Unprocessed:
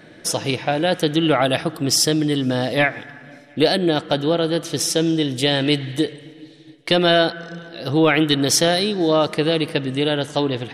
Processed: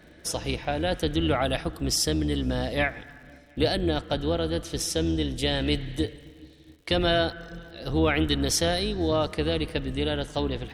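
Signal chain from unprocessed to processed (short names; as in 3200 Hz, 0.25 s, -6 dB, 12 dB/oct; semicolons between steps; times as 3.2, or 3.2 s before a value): octaver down 2 oct, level -1 dB; crackle 82/s -39 dBFS; gain -8 dB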